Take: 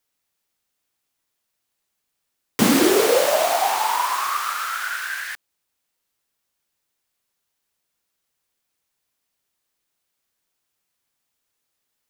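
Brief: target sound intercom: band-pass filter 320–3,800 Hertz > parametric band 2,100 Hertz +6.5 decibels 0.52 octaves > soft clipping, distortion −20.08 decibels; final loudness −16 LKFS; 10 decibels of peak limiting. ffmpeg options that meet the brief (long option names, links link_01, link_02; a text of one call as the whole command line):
ffmpeg -i in.wav -af "alimiter=limit=-13.5dB:level=0:latency=1,highpass=320,lowpass=3800,equalizer=frequency=2100:width_type=o:width=0.52:gain=6.5,asoftclip=threshold=-16.5dB,volume=9dB" out.wav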